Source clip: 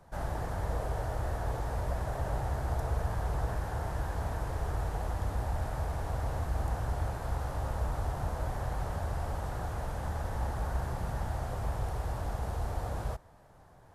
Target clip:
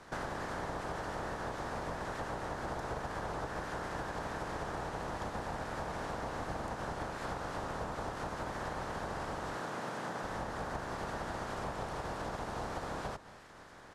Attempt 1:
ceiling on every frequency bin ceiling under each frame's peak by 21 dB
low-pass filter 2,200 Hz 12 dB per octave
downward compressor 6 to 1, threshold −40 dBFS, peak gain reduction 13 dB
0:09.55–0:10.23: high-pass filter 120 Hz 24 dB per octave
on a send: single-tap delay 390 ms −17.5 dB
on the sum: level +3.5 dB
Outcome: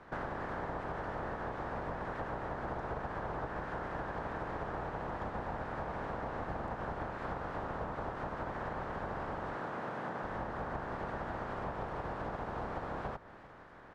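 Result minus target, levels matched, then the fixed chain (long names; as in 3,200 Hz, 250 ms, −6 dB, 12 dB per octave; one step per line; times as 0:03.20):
8,000 Hz band −17.0 dB; echo 162 ms late
ceiling on every frequency bin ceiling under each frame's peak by 21 dB
low-pass filter 6,600 Hz 12 dB per octave
downward compressor 6 to 1, threshold −40 dBFS, peak gain reduction 13 dB
0:09.55–0:10.23: high-pass filter 120 Hz 24 dB per octave
on a send: single-tap delay 228 ms −17.5 dB
on the sum: level +3.5 dB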